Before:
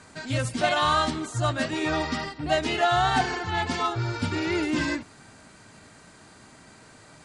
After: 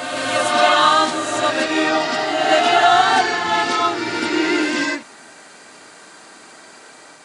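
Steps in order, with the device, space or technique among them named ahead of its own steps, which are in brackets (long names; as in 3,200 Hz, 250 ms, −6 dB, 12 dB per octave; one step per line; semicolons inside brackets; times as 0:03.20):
ghost voice (reversed playback; convolution reverb RT60 2.5 s, pre-delay 29 ms, DRR 0.5 dB; reversed playback; high-pass filter 380 Hz 12 dB per octave)
level +7.5 dB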